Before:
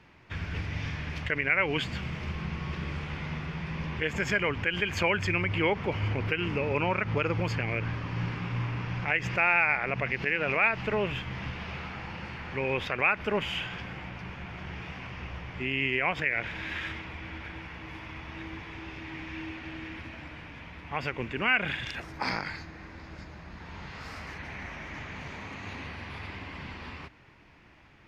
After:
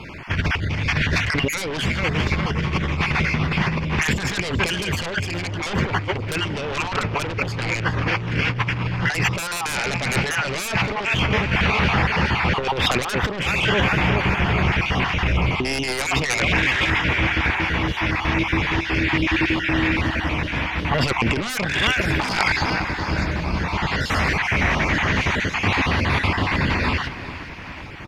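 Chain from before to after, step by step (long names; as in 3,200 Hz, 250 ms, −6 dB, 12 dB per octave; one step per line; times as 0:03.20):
time-frequency cells dropped at random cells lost 26%
repeating echo 408 ms, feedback 51%, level −14.5 dB
sine wavefolder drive 15 dB, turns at −12 dBFS
compressor whose output falls as the input rises −20 dBFS, ratio −0.5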